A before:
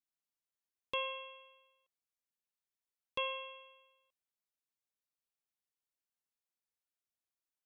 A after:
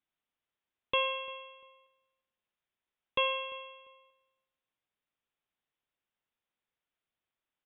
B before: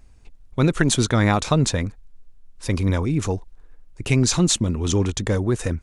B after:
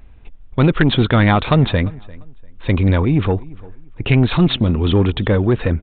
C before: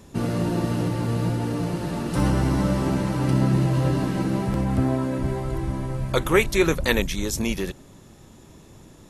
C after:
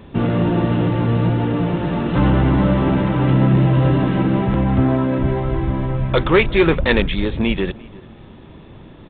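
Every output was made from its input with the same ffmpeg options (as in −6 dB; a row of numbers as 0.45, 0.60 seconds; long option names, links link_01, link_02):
-filter_complex "[0:a]aresample=8000,asoftclip=type=tanh:threshold=-13dB,aresample=44100,asplit=2[link_01][link_02];[link_02]adelay=346,lowpass=frequency=3100:poles=1,volume=-22dB,asplit=2[link_03][link_04];[link_04]adelay=346,lowpass=frequency=3100:poles=1,volume=0.25[link_05];[link_01][link_03][link_05]amix=inputs=3:normalize=0,volume=7.5dB"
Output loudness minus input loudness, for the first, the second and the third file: +7.0, +5.0, +6.5 LU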